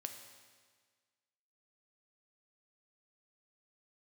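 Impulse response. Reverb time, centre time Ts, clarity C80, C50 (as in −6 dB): 1.6 s, 32 ms, 8.0 dB, 7.0 dB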